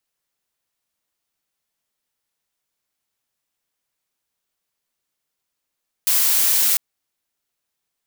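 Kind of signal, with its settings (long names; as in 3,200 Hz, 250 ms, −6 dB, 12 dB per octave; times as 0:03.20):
noise blue, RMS −17 dBFS 0.70 s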